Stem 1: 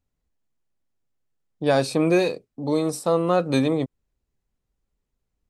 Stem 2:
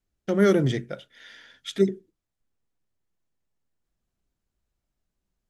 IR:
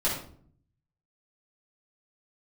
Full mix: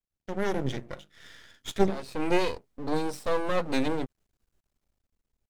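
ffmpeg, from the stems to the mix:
-filter_complex "[0:a]acrossover=split=6200[a][b];[b]acompressor=threshold=-45dB:ratio=4:attack=1:release=60[c];[a][c]amix=inputs=2:normalize=0,adelay=200,volume=-0.5dB[d];[1:a]bandreject=f=50:t=h:w=6,bandreject=f=100:t=h:w=6,bandreject=f=150:t=h:w=6,bandreject=f=200:t=h:w=6,bandreject=f=250:t=h:w=6,bandreject=f=300:t=h:w=6,bandreject=f=350:t=h:w=6,dynaudnorm=f=240:g=7:m=13dB,volume=-6.5dB,asplit=2[e][f];[f]apad=whole_len=251026[g];[d][g]sidechaincompress=threshold=-31dB:ratio=16:attack=40:release=390[h];[h][e]amix=inputs=2:normalize=0,aeval=exprs='max(val(0),0)':c=same"

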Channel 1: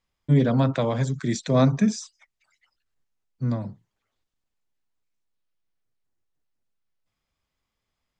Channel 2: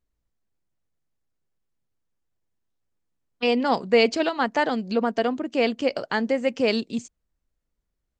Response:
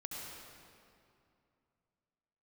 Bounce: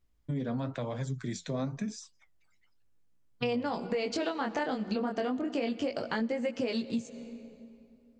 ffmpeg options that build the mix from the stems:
-filter_complex "[0:a]alimiter=limit=-14dB:level=0:latency=1:release=336,flanger=delay=5.5:depth=7.5:regen=64:speed=0.99:shape=triangular,volume=-4dB[a];[1:a]alimiter=limit=-15dB:level=0:latency=1,lowshelf=f=240:g=5.5,flanger=delay=16.5:depth=7.8:speed=0.3,volume=2.5dB,asplit=2[b][c];[c]volume=-15dB[d];[2:a]atrim=start_sample=2205[e];[d][e]afir=irnorm=-1:irlink=0[f];[a][b][f]amix=inputs=3:normalize=0,acompressor=threshold=-29dB:ratio=6"

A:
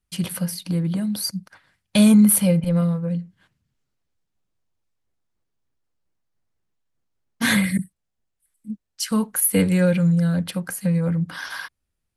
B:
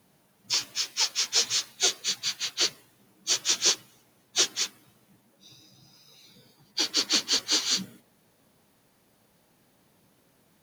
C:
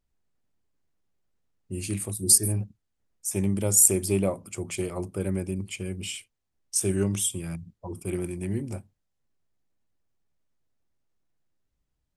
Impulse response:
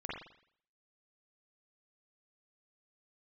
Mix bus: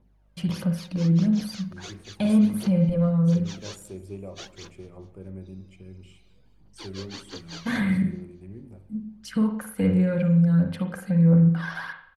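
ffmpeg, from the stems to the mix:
-filter_complex "[0:a]acompressor=threshold=-38dB:ratio=1.5,adelay=250,volume=2.5dB,asplit=2[a][b];[b]volume=-3.5dB[c];[1:a]aeval=exprs='val(0)+0.000891*(sin(2*PI*50*n/s)+sin(2*PI*2*50*n/s)/2+sin(2*PI*3*50*n/s)/3+sin(2*PI*4*50*n/s)/4+sin(2*PI*5*50*n/s)/5)':c=same,flanger=delay=16.5:depth=5.6:speed=0.93,volume=-3.5dB,asplit=2[d][e];[e]volume=-21dB[f];[2:a]aeval=exprs='0.422*(abs(mod(val(0)/0.422+3,4)-2)-1)':c=same,volume=-14.5dB,asplit=3[g][h][i];[h]volume=-7dB[j];[i]volume=-17.5dB[k];[a][d]amix=inputs=2:normalize=0,aphaser=in_gain=1:out_gain=1:delay=2:decay=0.56:speed=1.5:type=triangular,alimiter=limit=-17.5dB:level=0:latency=1:release=34,volume=0dB[l];[3:a]atrim=start_sample=2205[m];[c][j]amix=inputs=2:normalize=0[n];[n][m]afir=irnorm=-1:irlink=0[o];[f][k]amix=inputs=2:normalize=0,aecho=0:1:211|422|633|844|1055|1266|1477:1|0.47|0.221|0.104|0.0488|0.0229|0.0108[p];[g][l][o][p]amix=inputs=4:normalize=0,lowpass=f=1k:p=1"

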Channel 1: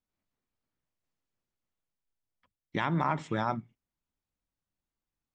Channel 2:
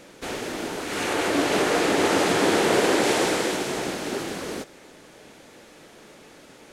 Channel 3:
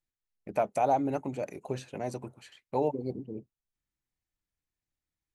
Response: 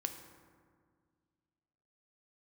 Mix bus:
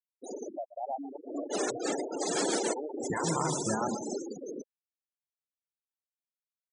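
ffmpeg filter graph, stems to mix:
-filter_complex "[0:a]flanger=delay=4.7:depth=6.9:regen=38:speed=0.57:shape=sinusoidal,adelay=350,volume=-2dB,asplit=2[a][b];[b]volume=-4dB[c];[1:a]highpass=f=96:p=1,bass=f=250:g=-2,treble=f=4k:g=15,volume=-10dB,asplit=2[d][e];[e]volume=-16dB[f];[2:a]highshelf=f=2.1k:t=q:w=1.5:g=-11,volume=-11dB,asplit=3[g][h][i];[h]volume=-11dB[j];[i]apad=whole_len=296426[k];[d][k]sidechaincompress=threshold=-47dB:ratio=20:attack=6.7:release=282[l];[a][l]amix=inputs=2:normalize=0,acontrast=46,alimiter=limit=-17dB:level=0:latency=1:release=87,volume=0dB[m];[c][f][j]amix=inputs=3:normalize=0,aecho=0:1:130|260|390|520|650|780:1|0.42|0.176|0.0741|0.0311|0.0131[n];[g][m][n]amix=inputs=3:normalize=0,afftfilt=real='re*gte(hypot(re,im),0.0562)':imag='im*gte(hypot(re,im),0.0562)':win_size=1024:overlap=0.75"

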